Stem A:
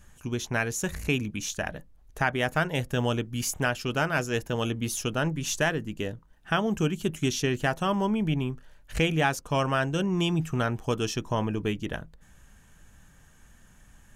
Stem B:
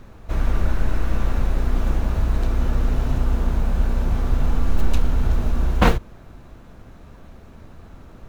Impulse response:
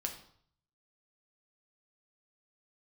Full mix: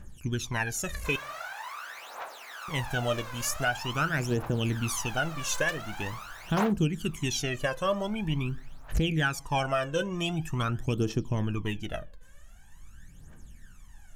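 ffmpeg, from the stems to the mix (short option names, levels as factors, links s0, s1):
-filter_complex "[0:a]equalizer=f=320:w=3.9:g=3.5,volume=0.531,asplit=3[s0][s1][s2];[s0]atrim=end=1.16,asetpts=PTS-STARTPTS,afade=t=out:st=1.156:d=0.004:c=hsin[s3];[s1]atrim=start=1.16:end=2.68,asetpts=PTS-STARTPTS,volume=0[s4];[s2]atrim=start=2.68,asetpts=PTS-STARTPTS,afade=t=in:d=0.004:c=hsin[s5];[s3][s4][s5]concat=n=3:v=0:a=1,asplit=2[s6][s7];[s7]volume=0.2[s8];[1:a]highpass=f=770:w=0.5412,highpass=f=770:w=1.3066,adelay=750,volume=0.501[s9];[2:a]atrim=start_sample=2205[s10];[s8][s10]afir=irnorm=-1:irlink=0[s11];[s6][s9][s11]amix=inputs=3:normalize=0,aphaser=in_gain=1:out_gain=1:delay=2:decay=0.77:speed=0.45:type=triangular,alimiter=limit=0.15:level=0:latency=1:release=262"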